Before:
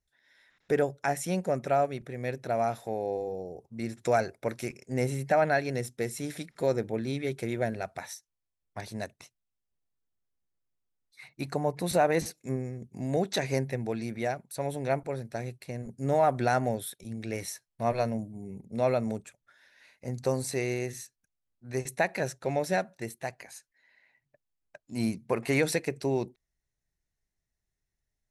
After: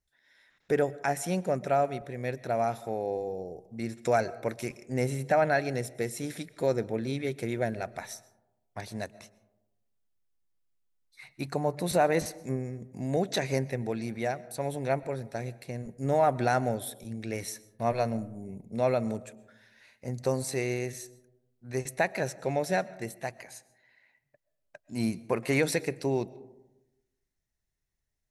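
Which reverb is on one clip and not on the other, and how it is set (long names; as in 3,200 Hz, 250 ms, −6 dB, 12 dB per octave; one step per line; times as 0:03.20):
comb and all-pass reverb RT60 1 s, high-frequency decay 0.3×, pre-delay 85 ms, DRR 19.5 dB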